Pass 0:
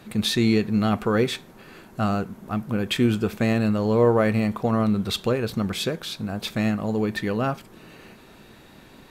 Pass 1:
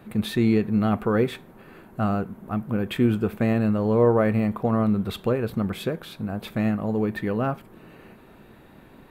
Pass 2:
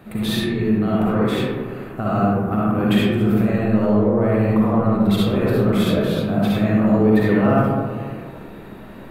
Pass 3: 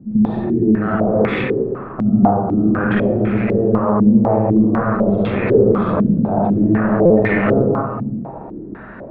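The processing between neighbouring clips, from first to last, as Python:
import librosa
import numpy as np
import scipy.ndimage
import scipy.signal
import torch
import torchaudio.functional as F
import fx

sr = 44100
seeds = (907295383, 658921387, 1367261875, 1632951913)

y1 = fx.peak_eq(x, sr, hz=5700.0, db=-15.0, octaves=1.7)
y2 = fx.over_compress(y1, sr, threshold_db=-25.0, ratio=-1.0)
y2 = fx.rev_freeverb(y2, sr, rt60_s=1.8, hf_ratio=0.3, predelay_ms=20, drr_db=-7.0)
y3 = fx.diode_clip(y2, sr, knee_db=-17.0)
y3 = fx.buffer_glitch(y3, sr, at_s=(7.05,), block=256, repeats=8)
y3 = fx.filter_held_lowpass(y3, sr, hz=4.0, low_hz=230.0, high_hz=2200.0)
y3 = y3 * librosa.db_to_amplitude(1.5)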